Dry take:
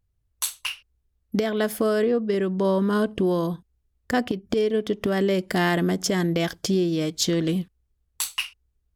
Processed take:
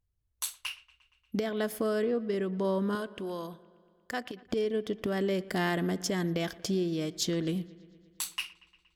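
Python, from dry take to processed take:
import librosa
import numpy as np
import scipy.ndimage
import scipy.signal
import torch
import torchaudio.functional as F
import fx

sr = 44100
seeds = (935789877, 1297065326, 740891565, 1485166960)

y = fx.low_shelf(x, sr, hz=440.0, db=-12.0, at=(2.95, 4.46))
y = fx.echo_wet_lowpass(y, sr, ms=117, feedback_pct=68, hz=3400.0, wet_db=-21.0)
y = y * 10.0 ** (-7.5 / 20.0)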